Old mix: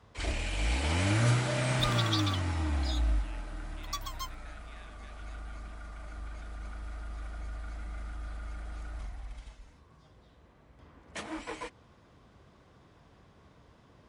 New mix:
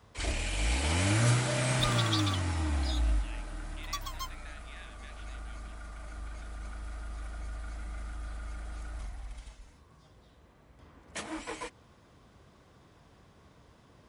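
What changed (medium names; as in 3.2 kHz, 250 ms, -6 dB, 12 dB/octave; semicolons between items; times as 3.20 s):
speech +5.5 dB; first sound: add treble shelf 8.3 kHz +11.5 dB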